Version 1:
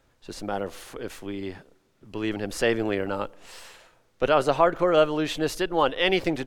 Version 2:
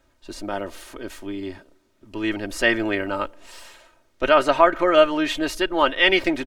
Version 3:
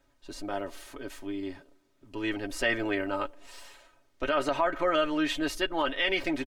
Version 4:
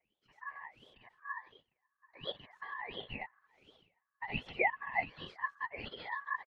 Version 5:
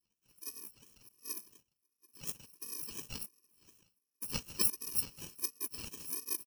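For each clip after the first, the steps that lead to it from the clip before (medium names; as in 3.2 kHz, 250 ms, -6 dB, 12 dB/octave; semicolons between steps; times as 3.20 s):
comb 3.2 ms, depth 63%; dynamic bell 1.9 kHz, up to +8 dB, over -37 dBFS, Q 0.89
comb 7.1 ms, depth 46%; peak limiter -9.5 dBFS, peak gain reduction 7.5 dB; trim -6.5 dB
whisper effect; wah-wah 1.4 Hz 250–2000 Hz, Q 9.4; ring modulator 1.4 kHz; trim +3 dB
bit-reversed sample order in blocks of 64 samples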